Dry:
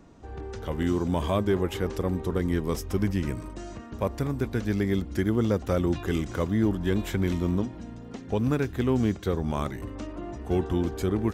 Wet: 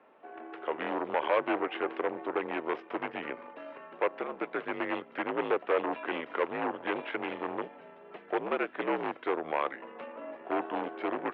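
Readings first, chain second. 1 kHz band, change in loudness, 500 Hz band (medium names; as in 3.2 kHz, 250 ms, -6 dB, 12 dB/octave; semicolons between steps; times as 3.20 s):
+4.0 dB, -5.5 dB, -3.0 dB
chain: Chebyshev shaper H 6 -12 dB, 8 -21 dB, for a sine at -14 dBFS; mistuned SSB -62 Hz 490–2900 Hz; trim +1 dB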